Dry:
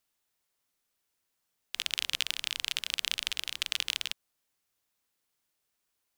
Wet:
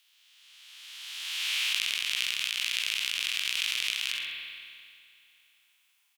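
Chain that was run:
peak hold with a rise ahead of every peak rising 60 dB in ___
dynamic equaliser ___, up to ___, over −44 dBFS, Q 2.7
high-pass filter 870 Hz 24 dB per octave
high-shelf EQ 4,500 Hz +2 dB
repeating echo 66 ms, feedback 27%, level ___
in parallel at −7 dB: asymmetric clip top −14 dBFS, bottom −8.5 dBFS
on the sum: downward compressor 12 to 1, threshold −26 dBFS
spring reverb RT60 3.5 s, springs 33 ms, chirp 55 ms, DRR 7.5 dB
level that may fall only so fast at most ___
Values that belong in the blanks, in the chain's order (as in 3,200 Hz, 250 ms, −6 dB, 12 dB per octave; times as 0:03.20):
2.40 s, 2,400 Hz, +6 dB, −13 dB, 27 dB per second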